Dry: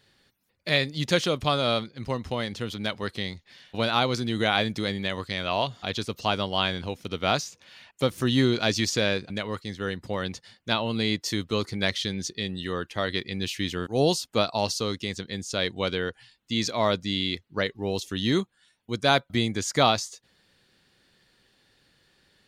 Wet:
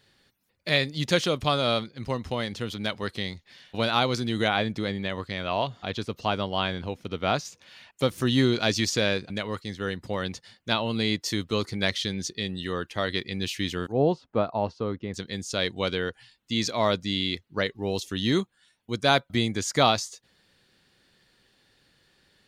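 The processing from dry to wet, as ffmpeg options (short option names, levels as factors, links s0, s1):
-filter_complex "[0:a]asettb=1/sr,asplit=3[s0][s1][s2];[s0]atrim=end=4.484[s3];[s1]atrim=start=4.48:end=7.45,asetpts=PTS-STARTPTS,afade=t=in:d=0.004:c=qsin,afade=t=out:st=2.966:d=0.004:c=qsin,highshelf=f=3700:g=-9.5[s4];[s2]atrim=start=7.446[s5];[s3][s4]acrossfade=d=0.004:c1=hsin:c2=qsin[s6];[s6][s5]acrossfade=d=0.004:c1=qsin:c2=hsin,asettb=1/sr,asplit=3[s7][s8][s9];[s7]atrim=end=13.924[s10];[s8]atrim=start=13.92:end=15.14,asetpts=PTS-STARTPTS,afade=t=in:d=0.004:c=qsin,afade=t=out:st=1.216:d=0.004:c=qsin,lowpass=1300[s11];[s9]atrim=start=15.136[s12];[s10][s11]acrossfade=d=0.004:c1=hsin:c2=qsin[s13];[s13][s12]acrossfade=d=0.004:c1=qsin:c2=hsin"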